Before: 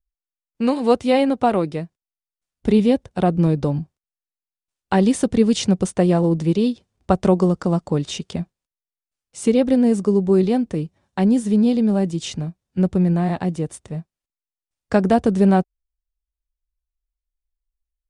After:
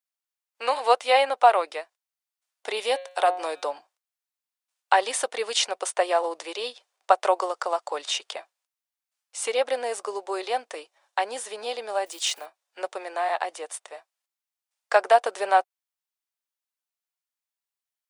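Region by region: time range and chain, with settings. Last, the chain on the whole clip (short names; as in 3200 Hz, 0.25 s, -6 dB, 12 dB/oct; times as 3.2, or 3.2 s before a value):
2.77–3.64 high shelf 5500 Hz +8 dB + de-hum 180.7 Hz, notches 24
12.06–12.47 block floating point 7-bit + high shelf 6800 Hz +7.5 dB
whole clip: inverse Chebyshev high-pass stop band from 190 Hz, stop band 60 dB; dynamic EQ 6300 Hz, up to -4 dB, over -47 dBFS, Q 0.98; gain +4.5 dB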